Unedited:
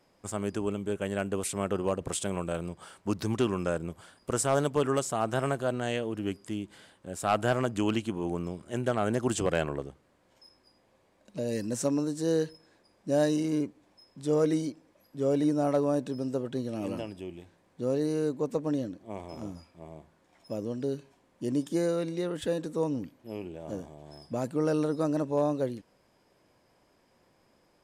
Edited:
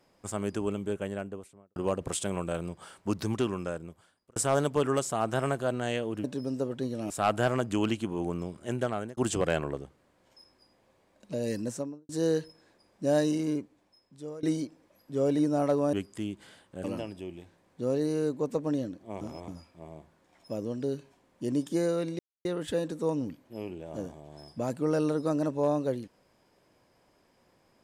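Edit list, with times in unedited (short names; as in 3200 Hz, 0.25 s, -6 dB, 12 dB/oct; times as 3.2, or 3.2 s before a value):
0.77–1.76 studio fade out
3.21–4.36 fade out
6.24–7.15 swap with 15.98–16.84
8.7–9.22 fade out equal-power
11.59–12.14 studio fade out
13.38–14.48 fade out, to -21.5 dB
19.21–19.48 reverse
22.19 insert silence 0.26 s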